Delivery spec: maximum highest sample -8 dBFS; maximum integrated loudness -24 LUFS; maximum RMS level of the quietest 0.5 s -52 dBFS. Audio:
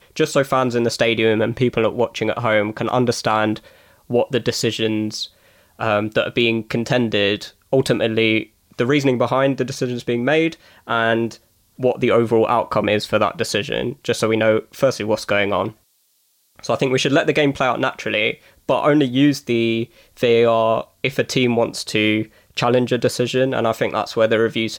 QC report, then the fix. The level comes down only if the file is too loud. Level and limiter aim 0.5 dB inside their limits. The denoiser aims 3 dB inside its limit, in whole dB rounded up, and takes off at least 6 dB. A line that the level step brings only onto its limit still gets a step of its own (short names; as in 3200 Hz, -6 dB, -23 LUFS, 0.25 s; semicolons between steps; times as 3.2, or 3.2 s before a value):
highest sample -5.5 dBFS: fail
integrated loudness -19.0 LUFS: fail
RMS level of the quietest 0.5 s -62 dBFS: OK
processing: gain -5.5 dB